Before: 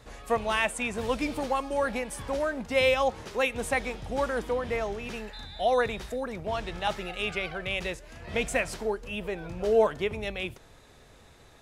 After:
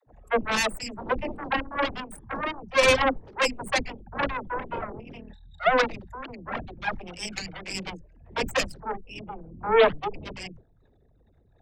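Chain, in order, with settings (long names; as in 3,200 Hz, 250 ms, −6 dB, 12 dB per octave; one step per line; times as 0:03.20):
spectral envelope exaggerated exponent 3
harmonic generator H 5 −16 dB, 6 −12 dB, 7 −10 dB, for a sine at −12 dBFS
all-pass dispersion lows, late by 74 ms, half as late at 300 Hz
level +1.5 dB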